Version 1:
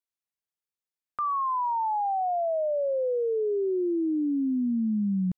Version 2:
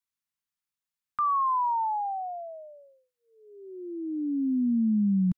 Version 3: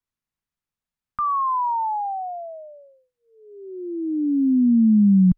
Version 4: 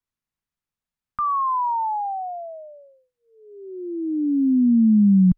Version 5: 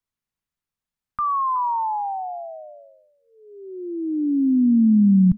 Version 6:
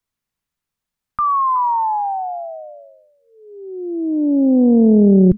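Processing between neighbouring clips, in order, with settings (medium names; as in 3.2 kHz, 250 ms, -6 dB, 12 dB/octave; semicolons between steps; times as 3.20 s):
Chebyshev band-stop 240–990 Hz, order 2; trim +2.5 dB
tilt EQ -2.5 dB/octave; trim +3.5 dB
no audible change
delay 369 ms -18.5 dB
loudspeaker Doppler distortion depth 0.74 ms; trim +5.5 dB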